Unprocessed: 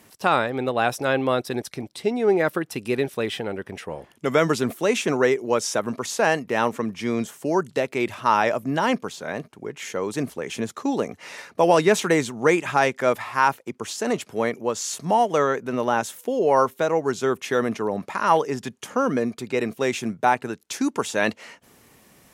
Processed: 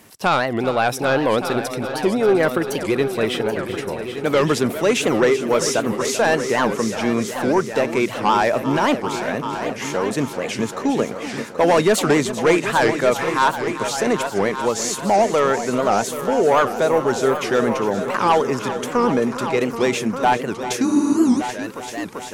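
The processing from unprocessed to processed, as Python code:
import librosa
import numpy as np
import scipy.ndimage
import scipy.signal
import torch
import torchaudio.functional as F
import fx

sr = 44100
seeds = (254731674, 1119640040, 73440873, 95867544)

p1 = fx.fold_sine(x, sr, drive_db=9, ceiling_db=-4.5)
p2 = x + (p1 * librosa.db_to_amplitude(-10.5))
p3 = fx.echo_heads(p2, sr, ms=390, heads='all three', feedback_pct=42, wet_db=-13.0)
p4 = fx.spec_freeze(p3, sr, seeds[0], at_s=20.87, hold_s=0.53)
p5 = fx.record_warp(p4, sr, rpm=78.0, depth_cents=250.0)
y = p5 * librosa.db_to_amplitude(-2.5)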